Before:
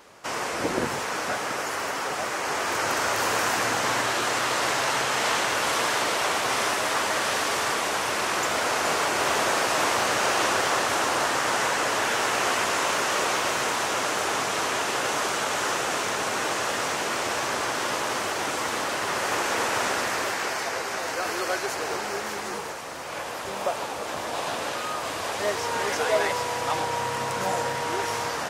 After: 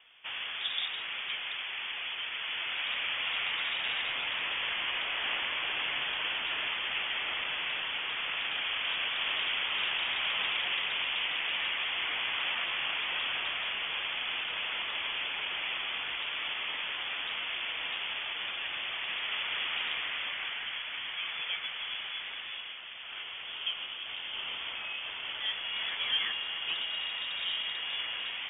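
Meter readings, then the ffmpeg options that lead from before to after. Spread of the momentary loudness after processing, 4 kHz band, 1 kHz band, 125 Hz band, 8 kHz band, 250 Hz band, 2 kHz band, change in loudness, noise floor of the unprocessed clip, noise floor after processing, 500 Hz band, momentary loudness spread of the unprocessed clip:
6 LU, −0.5 dB, −17.0 dB, below −20 dB, below −40 dB, −22.5 dB, −6.0 dB, −6.5 dB, −32 dBFS, −41 dBFS, −23.0 dB, 6 LU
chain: -filter_complex "[0:a]acrossover=split=250|1400|2900[link_01][link_02][link_03][link_04];[link_01]acrusher=bits=5:mix=0:aa=0.000001[link_05];[link_05][link_02][link_03][link_04]amix=inputs=4:normalize=0,lowpass=frequency=3200:width_type=q:width=0.5098,lowpass=frequency=3200:width_type=q:width=0.6013,lowpass=frequency=3200:width_type=q:width=0.9,lowpass=frequency=3200:width_type=q:width=2.563,afreqshift=-3800,volume=-7.5dB"

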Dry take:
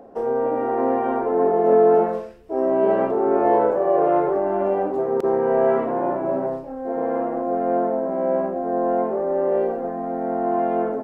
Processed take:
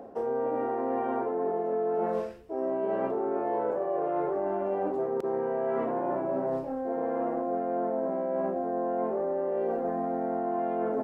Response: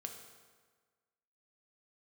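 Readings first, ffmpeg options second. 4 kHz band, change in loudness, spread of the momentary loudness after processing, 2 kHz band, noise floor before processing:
can't be measured, −9.0 dB, 1 LU, −8.5 dB, −32 dBFS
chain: -af "highpass=41,areverse,acompressor=threshold=-26dB:ratio=10,areverse"

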